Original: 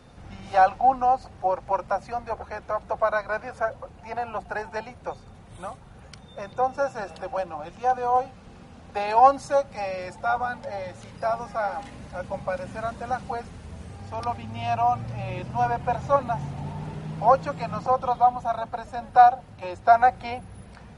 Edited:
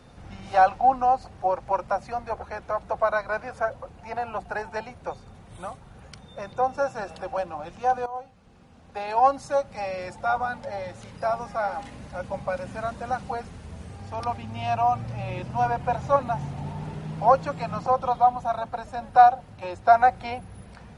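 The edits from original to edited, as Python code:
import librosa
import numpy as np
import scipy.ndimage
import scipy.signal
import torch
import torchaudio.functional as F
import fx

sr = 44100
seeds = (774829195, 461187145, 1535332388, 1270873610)

y = fx.edit(x, sr, fx.fade_in_from(start_s=8.06, length_s=1.99, floor_db=-14.5), tone=tone)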